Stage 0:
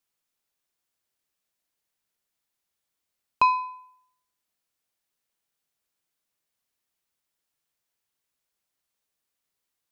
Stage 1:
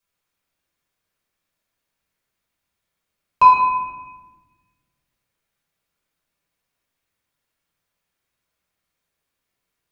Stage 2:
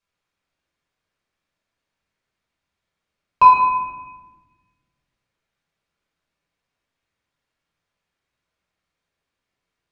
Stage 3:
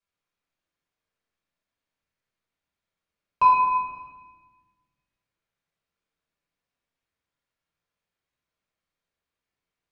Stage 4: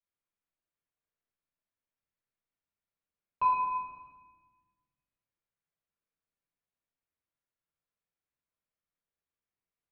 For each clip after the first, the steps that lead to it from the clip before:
reverb RT60 1.3 s, pre-delay 5 ms, DRR -5.5 dB; gain -1 dB
air absorption 76 m; gain +1 dB
Schroeder reverb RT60 1.3 s, combs from 27 ms, DRR 8 dB; gain -7.5 dB
air absorption 210 m; gain -8.5 dB

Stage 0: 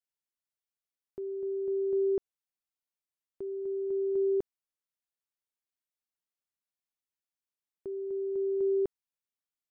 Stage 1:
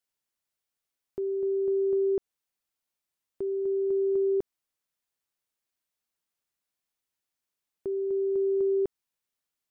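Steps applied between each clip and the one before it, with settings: compressor, threshold -30 dBFS, peak gain reduction 4.5 dB; gain +6.5 dB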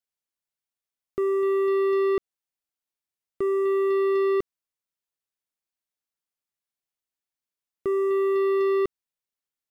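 sample leveller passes 3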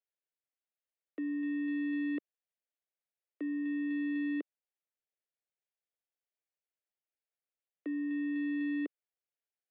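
three-band isolator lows -15 dB, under 590 Hz, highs -13 dB, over 2000 Hz; mistuned SSB -100 Hz 350–3600 Hz; fixed phaser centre 440 Hz, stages 4; gain +3.5 dB

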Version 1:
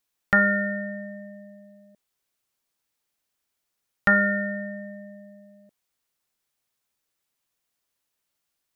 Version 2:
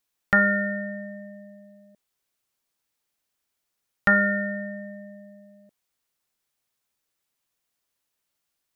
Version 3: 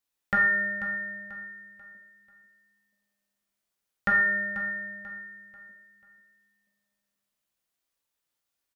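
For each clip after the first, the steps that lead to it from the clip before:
nothing audible
feedback echo 0.489 s, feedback 36%, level -13 dB; plate-style reverb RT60 0.58 s, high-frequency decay 0.9×, DRR 0.5 dB; gain -6.5 dB

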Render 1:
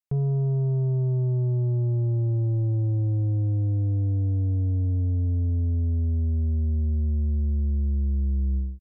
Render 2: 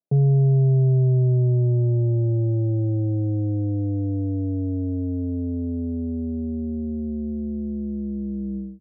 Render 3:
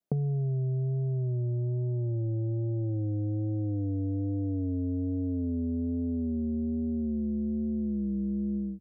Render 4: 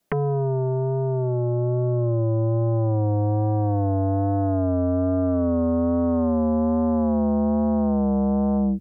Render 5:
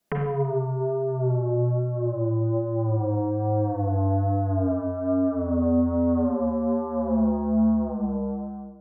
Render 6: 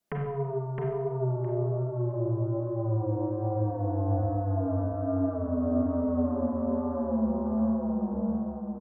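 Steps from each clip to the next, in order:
Chebyshev band-pass 130–680 Hz, order 3; in parallel at -2 dB: limiter -29.5 dBFS, peak gain reduction 9.5 dB; on the sum: gain +5 dB
vibrato 1.2 Hz 47 cents; bell 210 Hz +2.5 dB; compressor, threshold -31 dBFS, peak gain reduction 15.5 dB; gain +2.5 dB
sine folder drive 12 dB, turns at -18.5 dBFS
ending faded out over 2.40 s; vocal rider within 5 dB 2 s; Schroeder reverb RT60 0.89 s, combs from 32 ms, DRR 0 dB; gain -4.5 dB
flange 1.7 Hz, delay 9.4 ms, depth 7 ms, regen +89%; on a send: feedback echo 0.664 s, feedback 18%, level -4 dB; on the sum: gain -1.5 dB

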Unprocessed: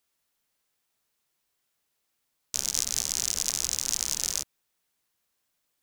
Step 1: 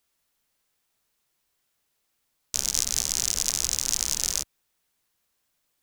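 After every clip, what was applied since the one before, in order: low shelf 65 Hz +6.5 dB; gain +2.5 dB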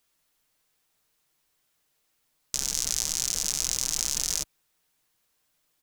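comb 6.5 ms, depth 34%; in parallel at -2 dB: negative-ratio compressor -30 dBFS, ratio -0.5; on the sum: gain -5.5 dB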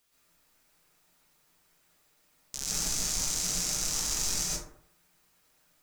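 limiter -15.5 dBFS, peak gain reduction 11 dB; plate-style reverb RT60 0.64 s, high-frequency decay 0.4×, pre-delay 0.11 s, DRR -7 dB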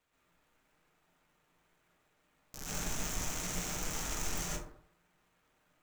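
median filter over 9 samples

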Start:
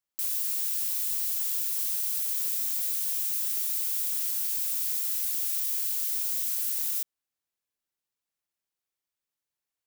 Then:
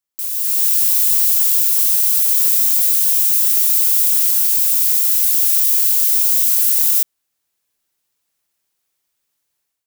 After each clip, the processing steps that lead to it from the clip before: high shelf 5300 Hz +4.5 dB; AGC gain up to 12 dB; gain +1 dB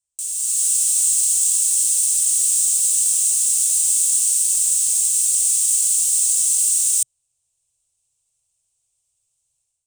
EQ curve 130 Hz 0 dB, 190 Hz -22 dB, 300 Hz -24 dB, 570 Hz -12 dB, 930 Hz -16 dB, 1800 Hz -26 dB, 2700 Hz -12 dB, 4800 Hz -12 dB, 8400 Hz +5 dB, 13000 Hz -25 dB; gain +7.5 dB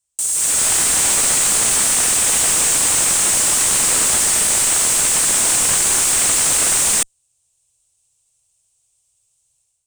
added harmonics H 8 -36 dB, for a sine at -4.5 dBFS; slew limiter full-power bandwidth 690 Hz; gain +7 dB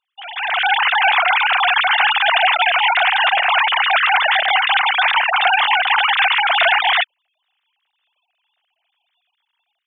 sine-wave speech

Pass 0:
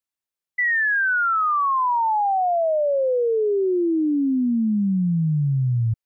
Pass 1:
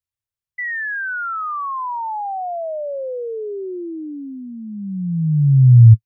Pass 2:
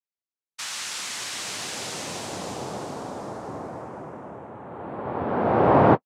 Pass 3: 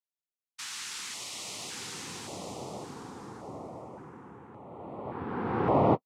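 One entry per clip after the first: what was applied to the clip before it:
resonant low shelf 160 Hz +12.5 dB, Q 3; gain -4 dB
noise vocoder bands 2; gain -8.5 dB
LFO notch square 0.88 Hz 620–1600 Hz; gain -6.5 dB

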